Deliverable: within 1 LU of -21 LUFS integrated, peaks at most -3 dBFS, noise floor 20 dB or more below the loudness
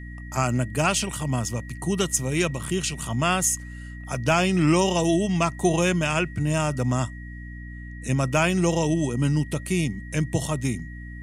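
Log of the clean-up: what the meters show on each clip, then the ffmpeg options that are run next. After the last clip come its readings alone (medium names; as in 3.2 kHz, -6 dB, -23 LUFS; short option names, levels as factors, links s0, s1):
hum 60 Hz; highest harmonic 300 Hz; hum level -35 dBFS; steady tone 1.9 kHz; tone level -44 dBFS; loudness -24.0 LUFS; peak level -7.5 dBFS; loudness target -21.0 LUFS
-> -af "bandreject=f=60:t=h:w=6,bandreject=f=120:t=h:w=6,bandreject=f=180:t=h:w=6,bandreject=f=240:t=h:w=6,bandreject=f=300:t=h:w=6"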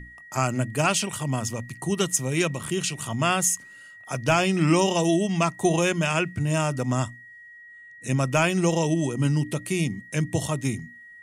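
hum not found; steady tone 1.9 kHz; tone level -44 dBFS
-> -af "bandreject=f=1900:w=30"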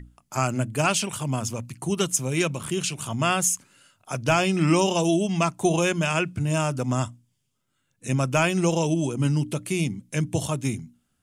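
steady tone not found; loudness -24.5 LUFS; peak level -7.5 dBFS; loudness target -21.0 LUFS
-> -af "volume=1.5"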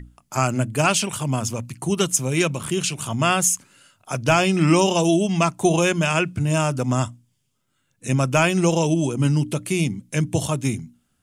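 loudness -21.0 LUFS; peak level -4.0 dBFS; noise floor -70 dBFS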